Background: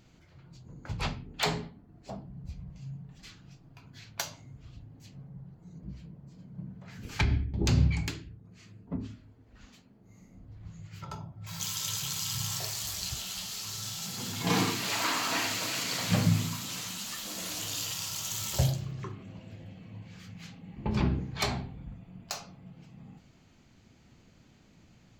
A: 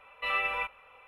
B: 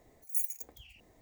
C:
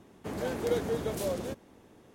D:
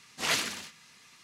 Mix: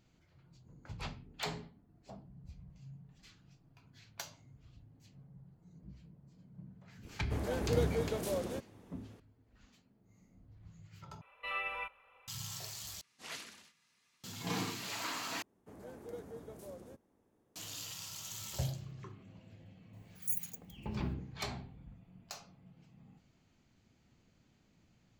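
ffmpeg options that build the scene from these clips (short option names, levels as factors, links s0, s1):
-filter_complex "[3:a]asplit=2[s0][s1];[0:a]volume=0.316[s2];[s1]equalizer=f=3300:t=o:w=1.8:g=-7.5[s3];[s2]asplit=4[s4][s5][s6][s7];[s4]atrim=end=11.214[s8];[1:a]atrim=end=1.07,asetpts=PTS-STARTPTS,volume=0.376[s9];[s5]atrim=start=12.276:end=13.014[s10];[4:a]atrim=end=1.23,asetpts=PTS-STARTPTS,volume=0.133[s11];[s6]atrim=start=14.236:end=15.424[s12];[s3]atrim=end=2.14,asetpts=PTS-STARTPTS,volume=0.15[s13];[s7]atrim=start=17.556[s14];[s0]atrim=end=2.14,asetpts=PTS-STARTPTS,volume=0.668,afade=t=in:d=0.004:c=hsin,afade=t=out:st=2.136:d=0.004:c=hsin,adelay=311346S[s15];[2:a]atrim=end=1.21,asetpts=PTS-STARTPTS,volume=0.631,afade=t=in:d=0.004:c=hsin,afade=t=out:st=1.206:d=0.004:c=hsin,adelay=19930[s16];[s8][s9]acrossfade=d=0.004:c1=hsin:c2=hsin[s17];[s17][s10]acrossfade=d=0.004:c1=hsin:c2=hsin[s18];[s18][s11]acrossfade=d=0.004:c1=hsin:c2=hsin[s19];[s19][s12]acrossfade=d=0.004:c1=hsin:c2=hsin[s20];[s20][s13]acrossfade=d=0.004:c1=hsin:c2=hsin[s21];[s21][s14]acrossfade=d=0.004:c1=hsin:c2=hsin[s22];[s22][s15][s16]amix=inputs=3:normalize=0"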